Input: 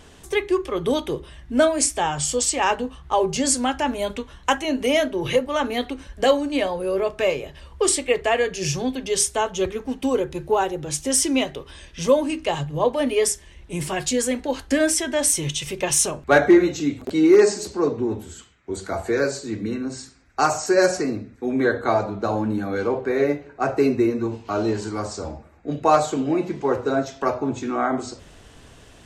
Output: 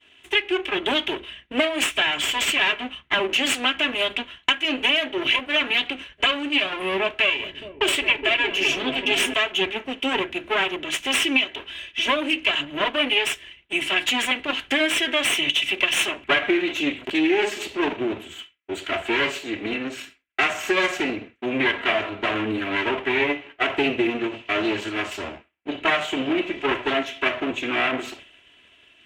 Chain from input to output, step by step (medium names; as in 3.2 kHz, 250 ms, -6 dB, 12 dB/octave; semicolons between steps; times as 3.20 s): comb filter that takes the minimum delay 3 ms; frequency weighting D; expander -36 dBFS; resonant high shelf 3.7 kHz -8.5 dB, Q 3; compression 6:1, threshold -17 dBFS, peak gain reduction 11 dB; 7.17–9.34 s: delay with an opening low-pass 209 ms, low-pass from 200 Hz, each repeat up 1 oct, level 0 dB